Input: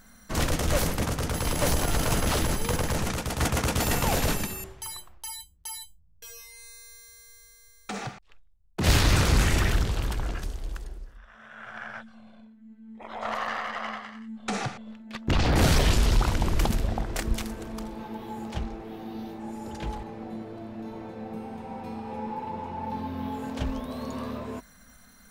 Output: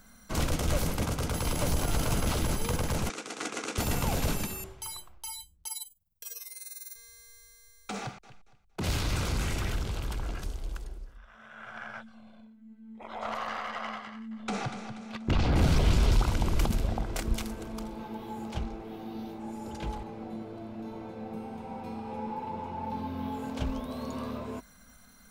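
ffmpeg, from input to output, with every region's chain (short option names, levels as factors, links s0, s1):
-filter_complex "[0:a]asettb=1/sr,asplit=3[s0][s1][s2];[s0]atrim=end=3.094[s3];[s1]atrim=start=3.09:end=3.78,asetpts=PTS-STARTPTS,afade=t=in:d=0.004:c=qsin,afade=t=out:st=0.686:d=0.004:c=qsin,aeval=exprs='if(lt(val(0),0),0.708*val(0),val(0))':c=same,highpass=f=280:w=0.5412,highpass=f=280:w=1.3066,equalizer=f=600:t=q:w=4:g=-9,equalizer=f=930:t=q:w=4:g=-8,equalizer=f=3200:t=q:w=4:g=-3,equalizer=f=4800:t=q:w=4:g=-3,lowpass=f=8300:w=0.5412,lowpass=f=8300:w=1.3066[s4];[s2]atrim=start=3.776[s5];[s3][s4]acrossfade=d=0.004:c1=hsin:c2=qsin[s6];[s6][s5]acrossfade=d=0.004:c1=qsin:c2=hsin,asettb=1/sr,asplit=3[s7][s8][s9];[s7]atrim=end=5.674[s10];[s8]atrim=start=5.67:end=6.96,asetpts=PTS-STARTPTS,afade=t=in:d=0.004:c=qsin,afade=t=out:st=1.286:d=0.004:c=qsin,acrossover=split=9300[s11][s12];[s12]acompressor=threshold=0.00224:ratio=4:attack=1:release=60[s13];[s11][s13]amix=inputs=2:normalize=0,aemphasis=mode=production:type=bsi,tremolo=f=20:d=0.788[s14];[s9]atrim=start=6.956[s15];[s10][s14]acrossfade=d=0.004:c1=hsin:c2=qsin[s16];[s16][s15]acrossfade=d=0.004:c1=qsin:c2=hsin,asettb=1/sr,asplit=3[s17][s18][s19];[s17]atrim=end=8.004[s20];[s18]atrim=start=8:end=10.46,asetpts=PTS-STARTPTS,afade=t=in:d=0.004:c=qsin,afade=t=out:st=2.456:d=0.004:c=qsin,acompressor=threshold=0.0355:ratio=2:attack=3.2:release=140:knee=1:detection=peak,aecho=1:1:231|462|693:0.15|0.0434|0.0126,atrim=end_sample=108486[s21];[s19]atrim=start=10.456[s22];[s20][s21]acrossfade=d=0.004:c1=hsin:c2=qsin[s23];[s23][s22]acrossfade=d=0.004:c1=qsin:c2=hsin,asettb=1/sr,asplit=3[s24][s25][s26];[s24]atrim=end=14.074[s27];[s25]atrim=start=14.07:end=16.12,asetpts=PTS-STARTPTS,afade=t=in:d=0.004:c=qsin,afade=t=out:st=2.046:d=0.004:c=qsin,highshelf=f=6000:g=-7.5,aecho=1:1:240|480|720|960:0.316|0.126|0.0506|0.0202,atrim=end_sample=90405,acompressor=mode=upward:threshold=0.0178:ratio=2.5:attack=3.2:release=140:knee=2.83:detection=peak[s28];[s26]atrim=start=16.116[s29];[s27][s28]acrossfade=d=0.004:c1=hsin:c2=qsin[s30];[s30][s29]acrossfade=d=0.004:c1=qsin:c2=hsin,bandreject=f=1800:w=10,acrossover=split=290[s31][s32];[s32]acompressor=threshold=0.0398:ratio=6[s33];[s31][s33]amix=inputs=2:normalize=0,volume=0.794"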